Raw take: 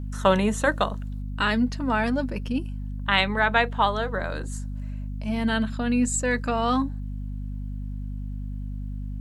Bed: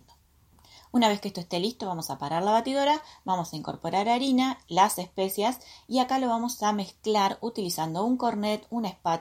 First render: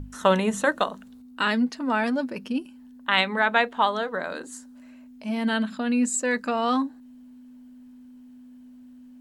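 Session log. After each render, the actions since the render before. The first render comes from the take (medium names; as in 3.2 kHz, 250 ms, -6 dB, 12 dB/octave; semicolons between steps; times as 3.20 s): hum notches 50/100/150/200 Hz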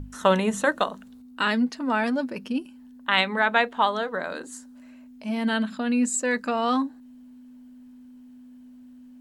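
no audible change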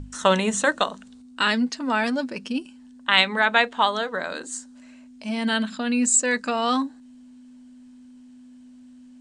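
steep low-pass 9.3 kHz 72 dB/octave; treble shelf 2.8 kHz +10 dB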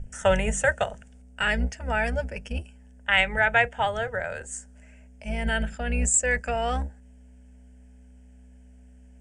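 octave divider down 2 oct, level -1 dB; static phaser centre 1.1 kHz, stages 6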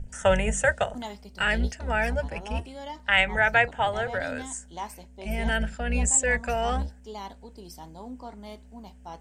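add bed -15 dB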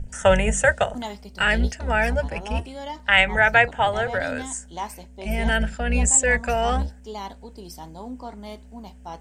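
trim +4.5 dB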